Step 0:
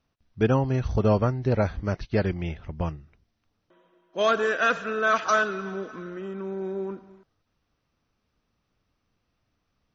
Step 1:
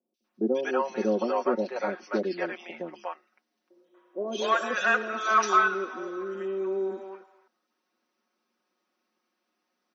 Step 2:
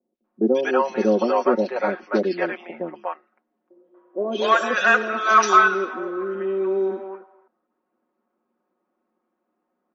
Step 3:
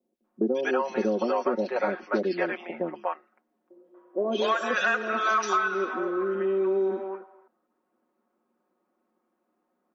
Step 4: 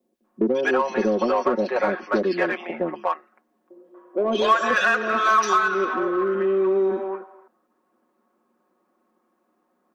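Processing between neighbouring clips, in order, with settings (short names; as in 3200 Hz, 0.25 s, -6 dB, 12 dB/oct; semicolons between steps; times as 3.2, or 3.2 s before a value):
elliptic high-pass 240 Hz, stop band 50 dB; comb 5.5 ms, depth 79%; three bands offset in time lows, highs, mids 0.14/0.24 s, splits 570/3100 Hz
low-pass opened by the level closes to 920 Hz, open at -20.5 dBFS; gain +7 dB
compressor 6:1, threshold -22 dBFS, peak gain reduction 12.5 dB
small resonant body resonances 1100/1700 Hz, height 7 dB; in parallel at -6 dB: soft clip -28 dBFS, distortion -8 dB; on the sum: gain +2.5 dB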